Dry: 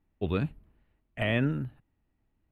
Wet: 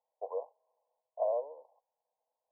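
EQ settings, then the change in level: rippled Chebyshev high-pass 480 Hz, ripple 3 dB; brick-wall FIR low-pass 1.1 kHz; +4.0 dB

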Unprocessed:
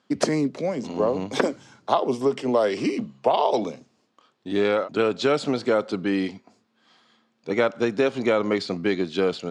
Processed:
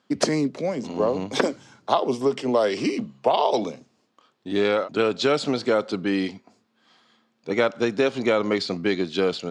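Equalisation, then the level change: dynamic bell 4.6 kHz, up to +4 dB, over -41 dBFS, Q 0.83; 0.0 dB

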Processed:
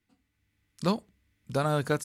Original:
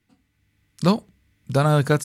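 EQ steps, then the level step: peaking EQ 140 Hz -5 dB 0.81 oct; -7.0 dB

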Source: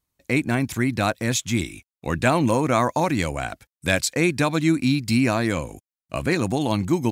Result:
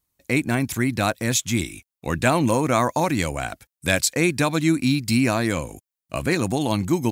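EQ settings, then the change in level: treble shelf 7.7 kHz +7.5 dB; 0.0 dB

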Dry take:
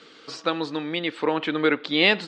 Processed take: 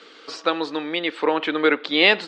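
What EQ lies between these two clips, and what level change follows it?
high-pass 310 Hz 12 dB/octave; treble shelf 5.8 kHz -5 dB; +4.0 dB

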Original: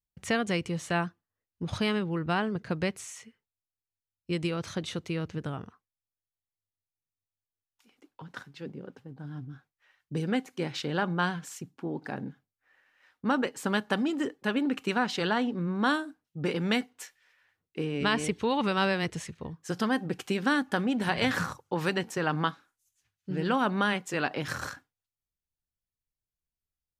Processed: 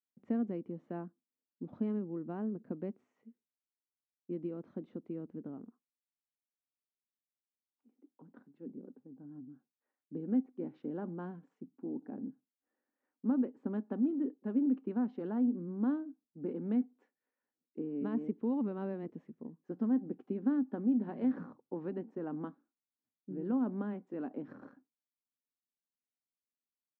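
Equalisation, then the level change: ladder band-pass 360 Hz, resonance 25%; peaking EQ 240 Hz +11.5 dB 0.66 oct; 0.0 dB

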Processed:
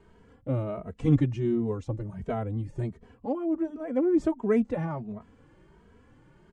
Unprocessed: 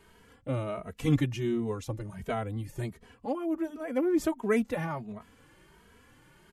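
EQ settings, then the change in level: steep low-pass 8.9 kHz 36 dB/octave; tilt shelf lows +7.5 dB, about 1.3 kHz; -3.5 dB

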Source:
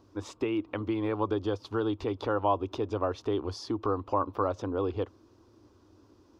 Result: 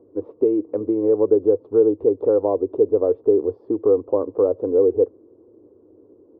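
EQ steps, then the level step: high-pass 260 Hz 6 dB/octave; resonant low-pass 460 Hz, resonance Q 4.9; distance through air 160 m; +5.5 dB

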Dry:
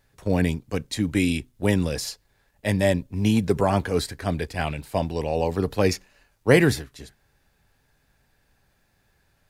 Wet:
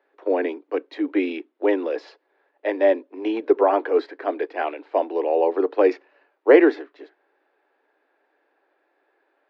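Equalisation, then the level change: steep high-pass 300 Hz 72 dB/octave; distance through air 180 m; tape spacing loss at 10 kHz 38 dB; +8.0 dB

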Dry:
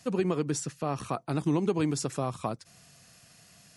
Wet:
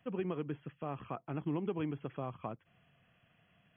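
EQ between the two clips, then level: brick-wall FIR low-pass 3.4 kHz; -9.0 dB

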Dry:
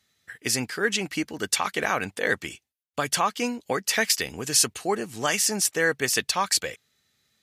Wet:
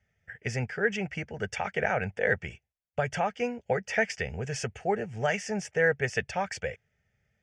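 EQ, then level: low-pass 5.9 kHz 24 dB/octave; tilt EQ -2.5 dB/octave; static phaser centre 1.1 kHz, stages 6; 0.0 dB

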